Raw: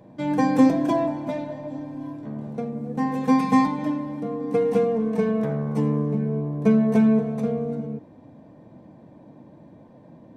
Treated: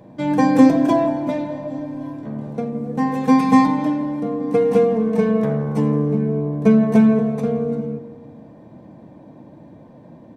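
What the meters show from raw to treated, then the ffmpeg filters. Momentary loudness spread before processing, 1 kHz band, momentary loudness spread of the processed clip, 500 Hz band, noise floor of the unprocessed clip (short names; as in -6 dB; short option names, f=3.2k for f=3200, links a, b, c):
15 LU, +4.5 dB, 15 LU, +5.0 dB, -49 dBFS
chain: -filter_complex "[0:a]asplit=2[a][b];[b]adelay=166,lowpass=f=1.9k:p=1,volume=-12.5dB,asplit=2[c][d];[d]adelay=166,lowpass=f=1.9k:p=1,volume=0.52,asplit=2[e][f];[f]adelay=166,lowpass=f=1.9k:p=1,volume=0.52,asplit=2[g][h];[h]adelay=166,lowpass=f=1.9k:p=1,volume=0.52,asplit=2[i][j];[j]adelay=166,lowpass=f=1.9k:p=1,volume=0.52[k];[a][c][e][g][i][k]amix=inputs=6:normalize=0,volume=4.5dB"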